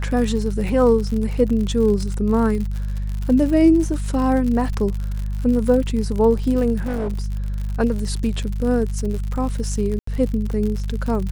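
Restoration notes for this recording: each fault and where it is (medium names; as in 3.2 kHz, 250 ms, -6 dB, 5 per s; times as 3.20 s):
crackle 78 per s -26 dBFS
hum 50 Hz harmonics 4 -24 dBFS
6.80–7.26 s: clipped -20 dBFS
9.99–10.07 s: dropout 84 ms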